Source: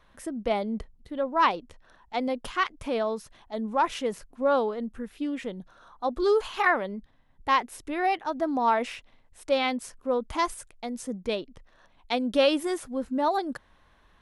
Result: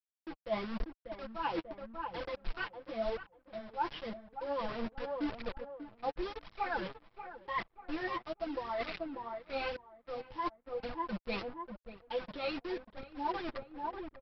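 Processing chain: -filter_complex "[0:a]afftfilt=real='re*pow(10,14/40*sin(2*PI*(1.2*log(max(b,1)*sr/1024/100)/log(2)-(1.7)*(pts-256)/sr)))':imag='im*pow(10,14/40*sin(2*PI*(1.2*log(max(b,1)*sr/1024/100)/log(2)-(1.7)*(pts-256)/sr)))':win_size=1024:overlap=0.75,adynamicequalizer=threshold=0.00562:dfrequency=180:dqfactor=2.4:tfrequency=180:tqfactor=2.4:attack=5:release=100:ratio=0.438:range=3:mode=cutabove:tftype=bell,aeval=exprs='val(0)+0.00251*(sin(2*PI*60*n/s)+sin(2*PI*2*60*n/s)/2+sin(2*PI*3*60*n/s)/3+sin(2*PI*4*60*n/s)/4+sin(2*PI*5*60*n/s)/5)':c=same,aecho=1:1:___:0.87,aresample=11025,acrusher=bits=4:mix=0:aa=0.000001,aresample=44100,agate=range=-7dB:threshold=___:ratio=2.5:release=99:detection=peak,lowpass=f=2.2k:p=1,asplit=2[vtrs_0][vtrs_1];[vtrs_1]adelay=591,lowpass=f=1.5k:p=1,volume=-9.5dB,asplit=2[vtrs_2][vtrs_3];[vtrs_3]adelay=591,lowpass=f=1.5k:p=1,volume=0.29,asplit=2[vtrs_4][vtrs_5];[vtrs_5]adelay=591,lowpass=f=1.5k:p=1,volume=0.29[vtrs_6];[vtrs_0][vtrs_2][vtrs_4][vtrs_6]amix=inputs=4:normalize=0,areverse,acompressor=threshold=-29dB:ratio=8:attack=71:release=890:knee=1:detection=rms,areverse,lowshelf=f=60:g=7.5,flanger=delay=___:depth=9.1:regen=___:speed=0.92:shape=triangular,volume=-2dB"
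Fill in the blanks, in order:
5.9, -36dB, 0.4, 17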